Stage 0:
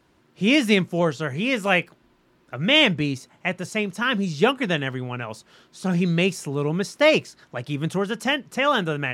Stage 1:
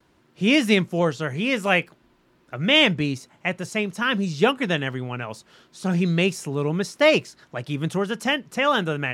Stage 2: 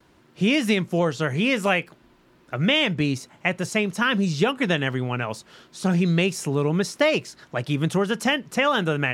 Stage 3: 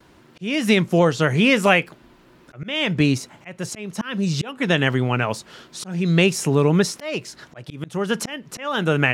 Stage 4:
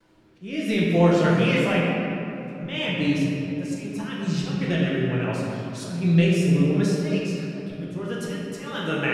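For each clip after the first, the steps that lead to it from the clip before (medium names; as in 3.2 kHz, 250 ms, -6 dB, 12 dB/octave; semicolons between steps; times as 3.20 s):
gate with hold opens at -56 dBFS
compression 6:1, threshold -21 dBFS, peak gain reduction 9 dB; trim +4 dB
slow attack 386 ms; trim +5.5 dB
flange 0.56 Hz, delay 9.1 ms, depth 2.8 ms, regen +54%; rotary cabinet horn 0.65 Hz; simulated room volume 120 m³, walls hard, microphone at 0.73 m; trim -4.5 dB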